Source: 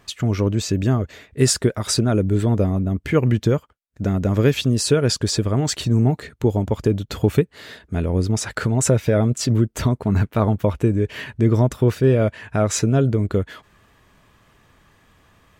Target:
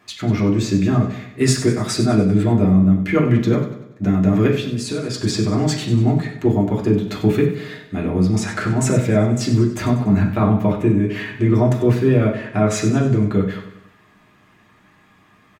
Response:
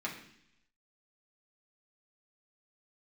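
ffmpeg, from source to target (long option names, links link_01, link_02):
-filter_complex "[0:a]asettb=1/sr,asplit=3[link_01][link_02][link_03];[link_01]atrim=end=4.474[link_04];[link_02]atrim=start=4.47:end=5.14,asetpts=PTS-STARTPTS,afade=type=in:duration=0.004:curve=qsin,afade=type=out:start_time=0.666:duration=0.004:curve=qsin,acompressor=threshold=-22dB:ratio=6[link_05];[link_03]atrim=start=5.136[link_06];[link_04][link_05]acrossfade=duration=0.004:curve1=hsin:curve2=qsin[link_07];[link_07][link_06]acrossfade=duration=0.004:curve1=qsin:curve2=hsin,aecho=1:1:96|192|288|384|480:0.282|0.135|0.0649|0.0312|0.015[link_08];[1:a]atrim=start_sample=2205,atrim=end_sample=4410[link_09];[link_08][link_09]afir=irnorm=-1:irlink=0"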